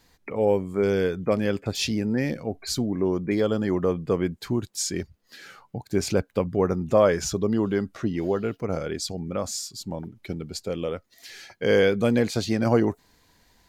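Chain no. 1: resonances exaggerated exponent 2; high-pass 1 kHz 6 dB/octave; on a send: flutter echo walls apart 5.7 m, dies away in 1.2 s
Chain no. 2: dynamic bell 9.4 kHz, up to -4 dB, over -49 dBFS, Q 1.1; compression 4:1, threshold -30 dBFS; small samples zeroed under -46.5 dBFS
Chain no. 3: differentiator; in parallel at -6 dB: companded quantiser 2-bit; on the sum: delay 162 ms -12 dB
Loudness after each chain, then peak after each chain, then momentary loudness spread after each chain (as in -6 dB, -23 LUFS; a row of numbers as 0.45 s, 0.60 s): -28.0 LUFS, -34.0 LUFS, -32.0 LUFS; -8.5 dBFS, -17.5 dBFS, -14.5 dBFS; 13 LU, 7 LU, 19 LU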